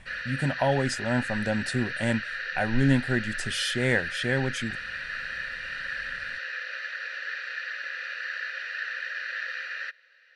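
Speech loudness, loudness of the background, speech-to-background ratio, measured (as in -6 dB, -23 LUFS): -28.0 LUFS, -33.0 LUFS, 5.0 dB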